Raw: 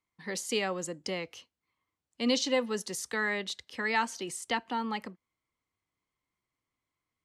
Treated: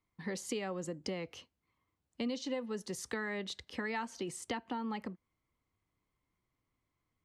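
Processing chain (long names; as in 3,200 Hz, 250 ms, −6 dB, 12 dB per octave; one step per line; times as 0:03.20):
spectral tilt −2 dB per octave
downward compressor 5 to 1, threshold −37 dBFS, peak gain reduction 15 dB
level +1.5 dB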